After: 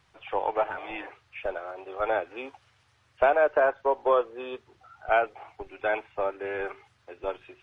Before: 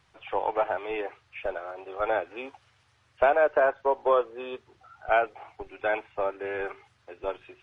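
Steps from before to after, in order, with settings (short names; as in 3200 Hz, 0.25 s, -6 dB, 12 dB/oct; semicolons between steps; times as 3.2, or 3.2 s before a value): spectral repair 0.71–1.05, 360–850 Hz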